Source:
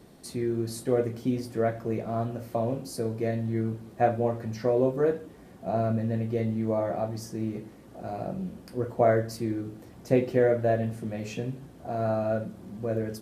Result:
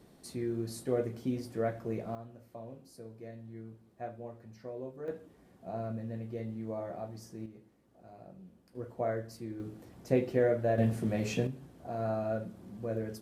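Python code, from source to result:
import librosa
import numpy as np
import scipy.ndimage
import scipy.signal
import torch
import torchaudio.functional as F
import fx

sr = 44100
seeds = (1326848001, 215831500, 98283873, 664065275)

y = fx.gain(x, sr, db=fx.steps((0.0, -6.0), (2.15, -18.0), (5.08, -11.0), (7.46, -18.5), (8.75, -11.5), (9.6, -5.0), (10.78, 2.0), (11.47, -6.0)))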